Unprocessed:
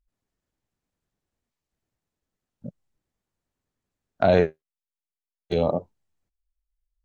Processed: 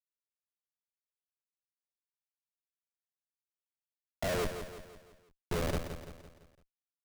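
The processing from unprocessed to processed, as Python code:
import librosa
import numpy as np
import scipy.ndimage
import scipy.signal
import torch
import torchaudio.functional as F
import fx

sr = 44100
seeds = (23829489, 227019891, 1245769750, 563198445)

y = fx.low_shelf(x, sr, hz=150.0, db=-7.0)
y = fx.schmitt(y, sr, flips_db=-25.0)
y = fx.echo_feedback(y, sr, ms=169, feedback_pct=48, wet_db=-9)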